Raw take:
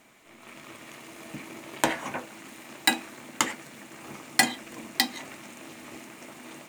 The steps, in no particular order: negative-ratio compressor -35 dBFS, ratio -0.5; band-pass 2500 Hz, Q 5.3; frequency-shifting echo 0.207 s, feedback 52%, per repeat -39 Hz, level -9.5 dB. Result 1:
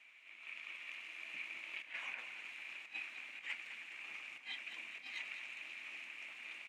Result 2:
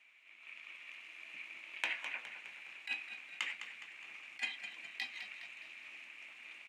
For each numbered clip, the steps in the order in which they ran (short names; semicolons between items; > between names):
negative-ratio compressor > band-pass > frequency-shifting echo; band-pass > negative-ratio compressor > frequency-shifting echo